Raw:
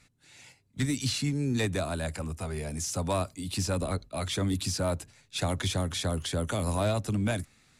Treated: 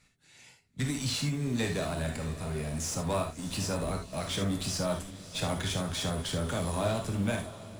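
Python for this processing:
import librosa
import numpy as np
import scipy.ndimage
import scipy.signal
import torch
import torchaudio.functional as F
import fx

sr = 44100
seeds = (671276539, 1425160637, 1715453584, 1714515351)

p1 = fx.schmitt(x, sr, flips_db=-34.0)
p2 = x + F.gain(torch.from_numpy(p1), -11.0).numpy()
p3 = fx.echo_diffused(p2, sr, ms=629, feedback_pct=45, wet_db=-14)
p4 = fx.rev_gated(p3, sr, seeds[0], gate_ms=100, shape='flat', drr_db=2.0)
y = F.gain(torch.from_numpy(p4), -4.5).numpy()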